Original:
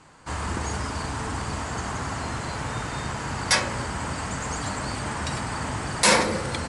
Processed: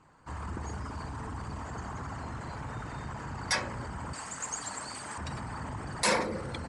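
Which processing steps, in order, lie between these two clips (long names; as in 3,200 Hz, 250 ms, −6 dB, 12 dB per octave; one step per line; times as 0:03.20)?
spectral envelope exaggerated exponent 1.5
0:04.13–0:05.18: RIAA equalisation recording
level −8.5 dB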